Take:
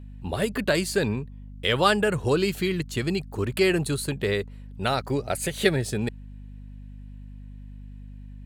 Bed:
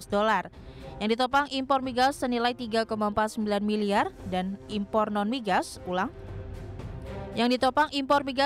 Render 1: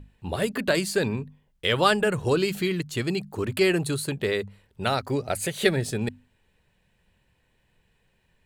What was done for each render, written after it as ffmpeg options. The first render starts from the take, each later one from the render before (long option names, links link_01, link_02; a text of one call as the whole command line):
ffmpeg -i in.wav -af "bandreject=frequency=50:width_type=h:width=6,bandreject=frequency=100:width_type=h:width=6,bandreject=frequency=150:width_type=h:width=6,bandreject=frequency=200:width_type=h:width=6,bandreject=frequency=250:width_type=h:width=6" out.wav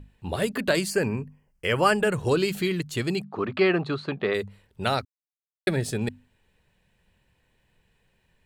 ffmpeg -i in.wav -filter_complex "[0:a]asettb=1/sr,asplit=3[link_01][link_02][link_03];[link_01]atrim=end=0.904[link_04];[link_02]atrim=start=0.9:end=1.96,asetpts=PTS-STARTPTS,afade=type=in:duration=0.004:curve=qsin,afade=type=out:start_time=1.056:duration=0.004:curve=qsin,asuperstop=centerf=3700:order=4:qfactor=2.3[link_05];[link_03]atrim=start=1.956[link_06];[link_04][link_05]acrossfade=duration=0.004:curve1=hsin:curve2=qsin[link_07];[link_07][link_06]acrossfade=duration=0.004:curve1=qsin:curve2=hsin,asplit=3[link_08][link_09][link_10];[link_08]afade=type=out:start_time=3.22:duration=0.02[link_11];[link_09]highpass=160,equalizer=frequency=200:width_type=q:width=4:gain=3,equalizer=frequency=720:width_type=q:width=4:gain=6,equalizer=frequency=1200:width_type=q:width=4:gain=10,equalizer=frequency=3100:width_type=q:width=4:gain=-3,lowpass=frequency=3900:width=0.5412,lowpass=frequency=3900:width=1.3066,afade=type=in:start_time=3.22:duration=0.02,afade=type=out:start_time=4.33:duration=0.02[link_12];[link_10]afade=type=in:start_time=4.33:duration=0.02[link_13];[link_11][link_12][link_13]amix=inputs=3:normalize=0,asplit=3[link_14][link_15][link_16];[link_14]atrim=end=5.05,asetpts=PTS-STARTPTS,afade=type=out:start_time=5.046:duration=0.004:curve=hsin[link_17];[link_15]atrim=start=5.05:end=5.67,asetpts=PTS-STARTPTS,volume=0[link_18];[link_16]atrim=start=5.67,asetpts=PTS-STARTPTS,afade=type=in:duration=0.004:curve=hsin[link_19];[link_17][link_18][link_19]concat=n=3:v=0:a=1" out.wav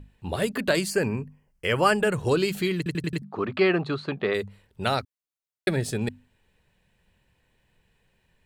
ffmpeg -i in.wav -filter_complex "[0:a]asplit=6[link_01][link_02][link_03][link_04][link_05][link_06];[link_01]atrim=end=2.862[link_07];[link_02]atrim=start=2.768:end=2.862[link_08];[link_03]atrim=start=2.768:end=2.862[link_09];[link_04]atrim=start=2.768:end=2.862[link_10];[link_05]atrim=start=2.768:end=2.862[link_11];[link_06]atrim=start=3.218[link_12];[link_07][link_08]acrossfade=duration=0.004:curve1=hsin:curve2=hsin[link_13];[link_13][link_09]acrossfade=duration=0.004:curve1=hsin:curve2=hsin[link_14];[link_14][link_10]acrossfade=duration=0.004:curve1=hsin:curve2=hsin[link_15];[link_15][link_11]acrossfade=duration=0.004:curve1=hsin:curve2=hsin[link_16];[link_16][link_12]acrossfade=duration=0.004:curve1=hsin:curve2=hsin" out.wav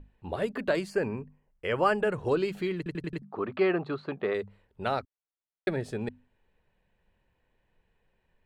ffmpeg -i in.wav -af "lowpass=frequency=1000:poles=1,equalizer=frequency=120:width=0.5:gain=-8.5" out.wav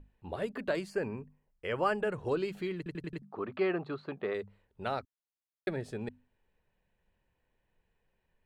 ffmpeg -i in.wav -af "volume=-5dB" out.wav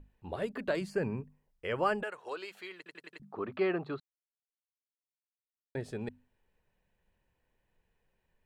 ffmpeg -i in.wav -filter_complex "[0:a]asettb=1/sr,asplit=3[link_01][link_02][link_03];[link_01]atrim=end=0.814[link_04];[link_02]atrim=start=0.81:end=1.21,asetpts=PTS-STARTPTS,afade=type=in:duration=0.004:curve=qsin,afade=type=out:start_time=0.396:duration=0.004:curve=qsin,equalizer=frequency=150:width=1.5:gain=8[link_05];[link_03]atrim=start=1.206[link_06];[link_04][link_05]acrossfade=duration=0.004:curve1=hsin:curve2=qsin[link_07];[link_07][link_06]acrossfade=duration=0.004:curve1=qsin:curve2=hsin,asettb=1/sr,asplit=3[link_08][link_09][link_10];[link_08]atrim=end=2.034[link_11];[link_09]atrim=start=2.03:end=3.2,asetpts=PTS-STARTPTS,afade=type=in:duration=0.004:curve=qsin,afade=type=out:start_time=1.166:duration=0.004:curve=qsin,highpass=770[link_12];[link_10]atrim=start=3.196[link_13];[link_11][link_12]acrossfade=duration=0.004:curve1=hsin:curve2=qsin[link_14];[link_14][link_13]acrossfade=duration=0.004:curve1=qsin:curve2=hsin,asplit=3[link_15][link_16][link_17];[link_15]atrim=end=4,asetpts=PTS-STARTPTS,afade=type=out:start_time=3.996:duration=0.004:curve=hsin[link_18];[link_16]atrim=start=4:end=5.75,asetpts=PTS-STARTPTS,volume=0[link_19];[link_17]atrim=start=5.75,asetpts=PTS-STARTPTS,afade=type=in:duration=0.004:curve=hsin[link_20];[link_18][link_19][link_20]concat=n=3:v=0:a=1" out.wav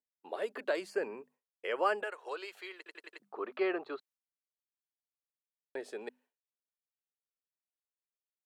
ffmpeg -i in.wav -af "highpass=frequency=350:width=0.5412,highpass=frequency=350:width=1.3066,agate=range=-33dB:threshold=-60dB:ratio=3:detection=peak" out.wav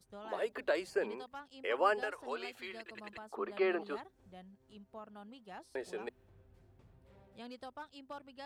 ffmpeg -i in.wav -i bed.wav -filter_complex "[1:a]volume=-24.5dB[link_01];[0:a][link_01]amix=inputs=2:normalize=0" out.wav